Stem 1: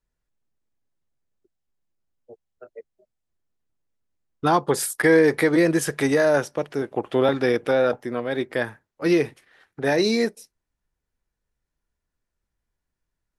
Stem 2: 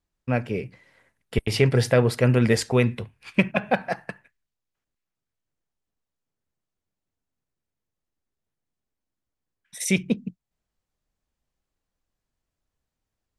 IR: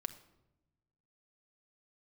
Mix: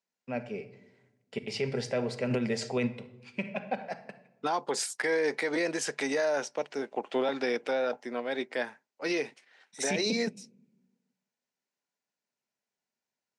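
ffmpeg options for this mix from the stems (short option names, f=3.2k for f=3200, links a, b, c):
-filter_complex "[0:a]highpass=260,equalizer=f=480:w=1.1:g=-5.5,volume=0dB,asplit=2[a][b];[1:a]volume=-3dB,asplit=2[c][d];[d]volume=-3dB[e];[b]apad=whole_len=590131[f];[c][f]sidechaingate=range=-33dB:threshold=-50dB:ratio=16:detection=peak[g];[2:a]atrim=start_sample=2205[h];[e][h]afir=irnorm=-1:irlink=0[i];[a][g][i]amix=inputs=3:normalize=0,highpass=f=160:w=0.5412,highpass=f=160:w=1.3066,equalizer=f=170:t=q:w=4:g=-8,equalizer=f=320:t=q:w=4:g=-9,equalizer=f=1.2k:t=q:w=4:g=-8,equalizer=f=1.7k:t=q:w=4:g=-5,equalizer=f=3.4k:t=q:w=4:g=-4,lowpass=f=7.5k:w=0.5412,lowpass=f=7.5k:w=1.3066,alimiter=limit=-20dB:level=0:latency=1:release=59"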